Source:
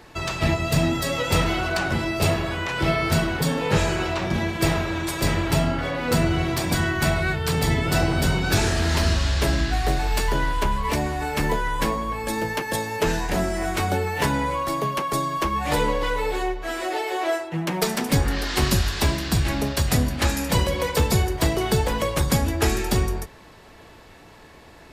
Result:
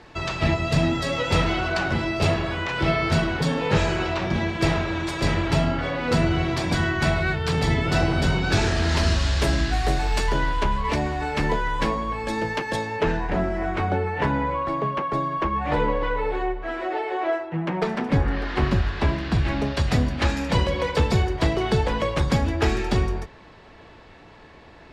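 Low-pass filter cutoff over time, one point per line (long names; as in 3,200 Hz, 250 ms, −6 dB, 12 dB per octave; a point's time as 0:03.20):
0:08.73 5,300 Hz
0:09.23 8,900 Hz
0:09.97 8,900 Hz
0:10.65 5,000 Hz
0:12.75 5,000 Hz
0:13.19 2,100 Hz
0:18.93 2,100 Hz
0:19.84 4,100 Hz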